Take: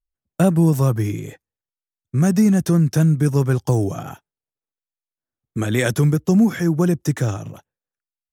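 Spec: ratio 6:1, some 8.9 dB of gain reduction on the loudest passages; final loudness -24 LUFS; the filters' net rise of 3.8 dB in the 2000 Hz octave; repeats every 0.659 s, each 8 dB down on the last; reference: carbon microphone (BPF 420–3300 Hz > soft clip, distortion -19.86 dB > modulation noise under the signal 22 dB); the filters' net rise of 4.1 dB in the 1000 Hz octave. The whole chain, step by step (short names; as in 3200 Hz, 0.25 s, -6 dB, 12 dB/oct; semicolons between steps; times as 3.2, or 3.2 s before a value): bell 1000 Hz +5 dB; bell 2000 Hz +3.5 dB; compressor 6:1, threshold -21 dBFS; BPF 420–3300 Hz; feedback echo 0.659 s, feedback 40%, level -8 dB; soft clip -19 dBFS; modulation noise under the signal 22 dB; gain +11 dB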